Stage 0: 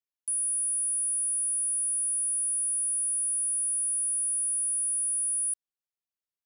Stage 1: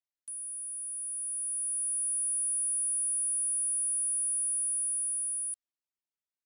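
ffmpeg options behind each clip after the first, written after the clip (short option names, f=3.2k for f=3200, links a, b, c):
-af "lowpass=9.4k,aecho=1:1:3.2:0.65,dynaudnorm=f=230:g=13:m=9dB,volume=-8.5dB"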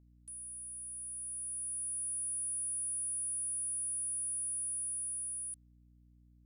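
-af "aeval=exprs='val(0)+0.00178*(sin(2*PI*60*n/s)+sin(2*PI*2*60*n/s)/2+sin(2*PI*3*60*n/s)/3+sin(2*PI*4*60*n/s)/4+sin(2*PI*5*60*n/s)/5)':c=same,volume=-6.5dB"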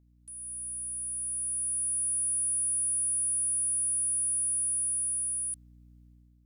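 -af "dynaudnorm=f=170:g=5:m=8dB"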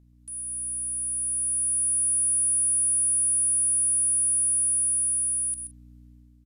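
-filter_complex "[0:a]asplit=2[a][b];[b]adelay=41,volume=-13.5dB[c];[a][c]amix=inputs=2:normalize=0,aecho=1:1:130:0.299,aresample=32000,aresample=44100,volume=6.5dB"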